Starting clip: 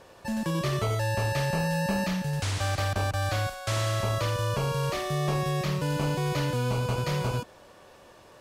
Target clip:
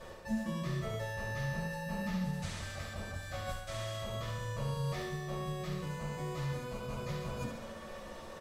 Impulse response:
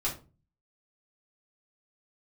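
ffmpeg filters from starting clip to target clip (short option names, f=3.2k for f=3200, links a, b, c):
-filter_complex "[0:a]areverse,acompressor=threshold=-40dB:ratio=12,areverse,aecho=1:1:71|142|213|284|355|426|497:0.473|0.265|0.148|0.0831|0.0465|0.0261|0.0146[a];[1:a]atrim=start_sample=2205,asetrate=70560,aresample=44100[b];[a][b]afir=irnorm=-1:irlink=0,volume=1.5dB"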